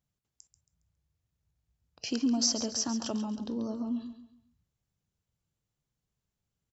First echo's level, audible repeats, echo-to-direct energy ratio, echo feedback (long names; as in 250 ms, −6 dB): −11.0 dB, 3, −10.5 dB, 33%